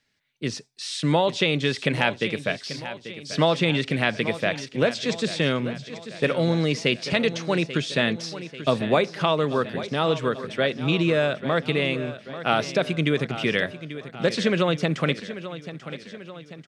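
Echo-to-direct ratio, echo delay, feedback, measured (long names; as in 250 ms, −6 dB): −11.5 dB, 839 ms, 54%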